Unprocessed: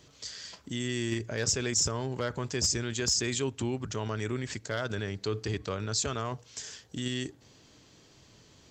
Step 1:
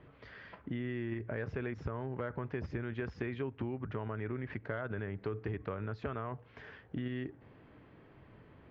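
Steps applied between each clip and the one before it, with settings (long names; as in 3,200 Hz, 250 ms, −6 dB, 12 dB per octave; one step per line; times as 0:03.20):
inverse Chebyshev low-pass filter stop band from 8,400 Hz, stop band 70 dB
downward compressor, threshold −36 dBFS, peak gain reduction 9.5 dB
level +2 dB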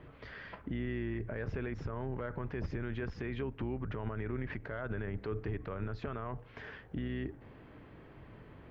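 sub-octave generator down 2 octaves, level −6 dB
brickwall limiter −32 dBFS, peak gain reduction 10 dB
level +4 dB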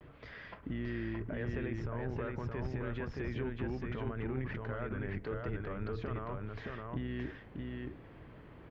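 pitch vibrato 0.78 Hz 65 cents
single-tap delay 621 ms −3 dB
level −1.5 dB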